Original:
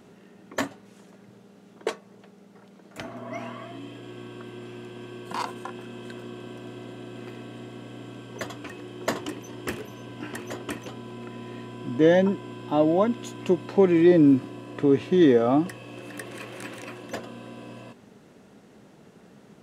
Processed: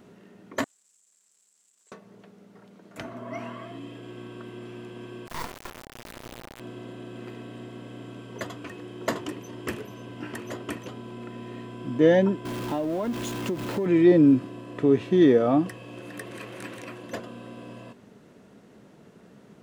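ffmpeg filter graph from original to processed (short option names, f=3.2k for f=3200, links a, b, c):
-filter_complex "[0:a]asettb=1/sr,asplit=3[a][b][c];[a]atrim=end=0.644[d];[b]atrim=start=0.64:end=1.92,asetpts=PTS-STARTPTS,afade=t=in:d=0.004:c=qsin,afade=t=out:st=1.276:d=0.004:c=qsin,aeval=exprs='val(0)+0.5*0.02*sgn(val(0))':c=same,bandpass=f=7.6k:t=q:w=9,acompressor=threshold=-57dB:ratio=4:attack=3.2:release=140:knee=1:detection=peak[e];[c]atrim=start=1.916[f];[d][e]acrossfade=d=0.004:c1=hsin:c2=qsin[g];[g][f]acrossfade=d=0.004:c1=qsin:c2=hsin,asettb=1/sr,asplit=3[h][i][j];[h]atrim=end=5.274[k];[i]atrim=start=5.27:end=6.6,asetpts=PTS-STARTPTS,afade=t=in:d=0.004:c=qsin,afade=t=out:st=1.326:d=0.004:c=qsin,bandreject=f=50:t=h:w=6,bandreject=f=100:t=h:w=6,bandreject=f=150:t=h:w=6,bandreject=f=200:t=h:w=6,acrusher=bits=3:dc=4:mix=0:aa=0.000001[l];[j]atrim=start=6.596[m];[k][l]acrossfade=d=0.004:c1=hsin:c2=qsin[n];[n][m]acrossfade=d=0.004:c1=qsin:c2=hsin,asettb=1/sr,asplit=3[o][p][q];[o]atrim=end=12.454[r];[p]atrim=start=12.45:end=13.86,asetpts=PTS-STARTPTS,afade=t=in:d=0.004:c=qsin,afade=t=out:st=1.406:d=0.004:c=qsin,aeval=exprs='val(0)+0.5*0.0316*sgn(val(0))':c=same,acompressor=threshold=-24dB:ratio=6:attack=3.2:release=140:knee=1:detection=peak[s];[q]atrim=start=13.856[t];[r][s]acrossfade=d=0.004:c1=hsin:c2=qsin[u];[u][t]acrossfade=d=0.004:c1=qsin:c2=hsin,lowpass=f=2.1k:p=1,aemphasis=mode=production:type=50kf,bandreject=f=800:w=13"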